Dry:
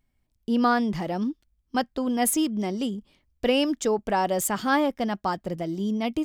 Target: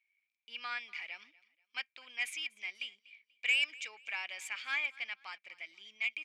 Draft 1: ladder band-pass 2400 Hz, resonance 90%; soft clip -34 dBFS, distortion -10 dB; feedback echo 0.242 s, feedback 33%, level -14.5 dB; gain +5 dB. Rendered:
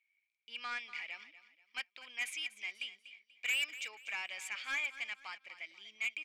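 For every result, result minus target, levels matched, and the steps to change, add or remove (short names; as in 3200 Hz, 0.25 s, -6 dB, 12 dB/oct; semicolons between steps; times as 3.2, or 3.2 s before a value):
soft clip: distortion +11 dB; echo-to-direct +7.5 dB
change: soft clip -25 dBFS, distortion -20 dB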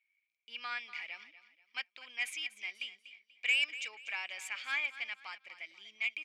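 echo-to-direct +7.5 dB
change: feedback echo 0.242 s, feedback 33%, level -22 dB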